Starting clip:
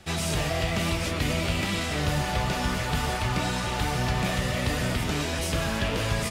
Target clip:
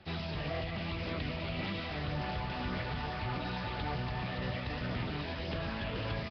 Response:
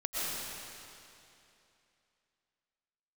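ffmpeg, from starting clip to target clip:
-af "highpass=f=53:p=1,alimiter=limit=-21dB:level=0:latency=1:release=98,aphaser=in_gain=1:out_gain=1:delay=1.2:decay=0.21:speed=1.8:type=sinusoidal,aecho=1:1:982:0.282,volume=-7dB" -ar 11025 -c:a nellymoser

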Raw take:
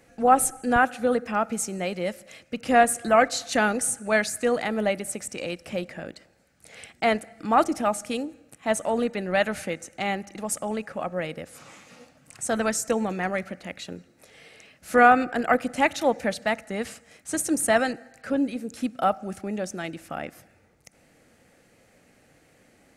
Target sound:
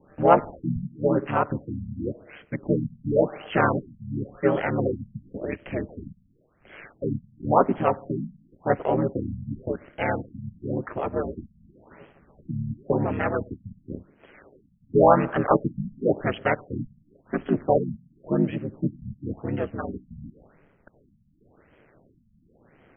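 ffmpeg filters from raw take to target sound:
-filter_complex "[0:a]asplit=2[a][b];[b]asoftclip=type=tanh:threshold=-12dB,volume=-3dB[c];[a][c]amix=inputs=2:normalize=0,aeval=exprs='val(0)*sin(2*PI*73*n/s)':c=same,asplit=2[d][e];[e]asetrate=33038,aresample=44100,atempo=1.33484,volume=-1dB[f];[d][f]amix=inputs=2:normalize=0,afftfilt=real='re*lt(b*sr/1024,220*pow(3400/220,0.5+0.5*sin(2*PI*0.93*pts/sr)))':imag='im*lt(b*sr/1024,220*pow(3400/220,0.5+0.5*sin(2*PI*0.93*pts/sr)))':win_size=1024:overlap=0.75,volume=-2dB"

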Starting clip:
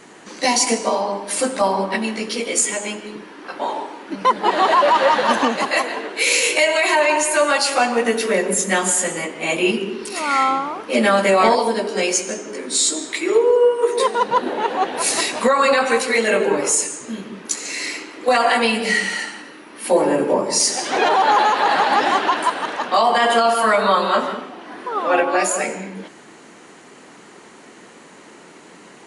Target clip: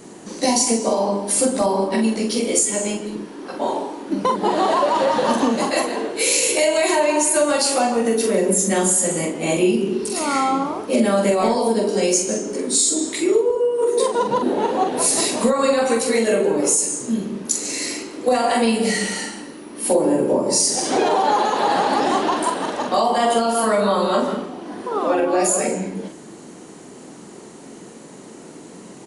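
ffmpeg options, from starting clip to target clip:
-filter_complex "[0:a]equalizer=f=1.9k:w=0.42:g=-15,acompressor=threshold=-23dB:ratio=6,asplit=2[a][b];[b]adelay=44,volume=-5dB[c];[a][c]amix=inputs=2:normalize=0,volume=8dB"

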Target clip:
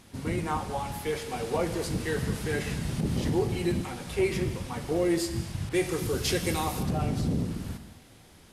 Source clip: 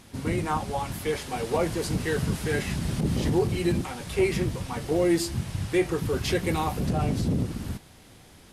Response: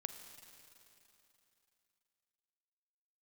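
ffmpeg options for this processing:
-filter_complex "[1:a]atrim=start_sample=2205,afade=t=out:st=0.32:d=0.01,atrim=end_sample=14553[a];[0:a][a]afir=irnorm=-1:irlink=0,asettb=1/sr,asplit=3[b][c][d];[b]atrim=end=5.694[e];[c]atrim=start=5.69:end=6.83,asetpts=PTS-STARTPTS,afade=t=in:d=0.004:c=qsin,afade=t=out:st=1.136:d=0.004:c=qsin,adynamicequalizer=threshold=0.00355:dfrequency=3600:dqfactor=0.7:tfrequency=3600:tqfactor=0.7:attack=5:release=100:ratio=0.375:range=4:mode=boostabove:tftype=highshelf[f];[d]atrim=start=6.826[g];[e][f]acrossfade=d=0.004:c1=hsin:c2=qsin[h];[h][g]acrossfade=d=0.004:c1=qsin:c2=hsin"

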